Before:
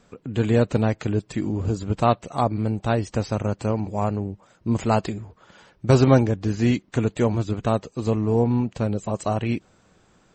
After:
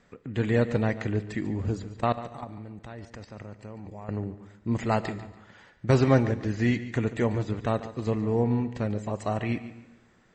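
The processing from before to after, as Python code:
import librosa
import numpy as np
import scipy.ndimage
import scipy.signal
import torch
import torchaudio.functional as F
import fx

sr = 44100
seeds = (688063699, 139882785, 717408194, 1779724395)

y = scipy.signal.sosfilt(scipy.signal.bessel(2, 6400.0, 'lowpass', norm='mag', fs=sr, output='sos'), x)
y = fx.peak_eq(y, sr, hz=1900.0, db=11.0, octaves=0.31)
y = fx.level_steps(y, sr, step_db=18, at=(1.82, 4.09))
y = fx.echo_feedback(y, sr, ms=143, feedback_pct=29, wet_db=-14.5)
y = fx.rev_schroeder(y, sr, rt60_s=1.2, comb_ms=26, drr_db=16.5)
y = y * 10.0 ** (-5.0 / 20.0)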